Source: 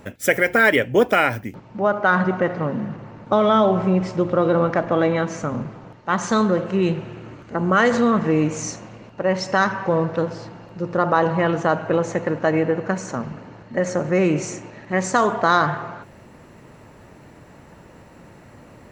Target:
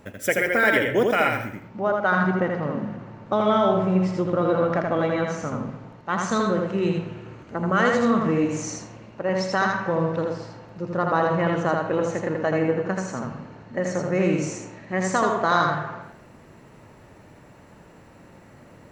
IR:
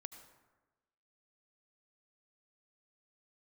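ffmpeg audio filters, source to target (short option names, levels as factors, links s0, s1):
-filter_complex "[0:a]asplit=2[s0][s1];[1:a]atrim=start_sample=2205,asetrate=79380,aresample=44100,adelay=81[s2];[s1][s2]afir=irnorm=-1:irlink=0,volume=2.37[s3];[s0][s3]amix=inputs=2:normalize=0,volume=0.562"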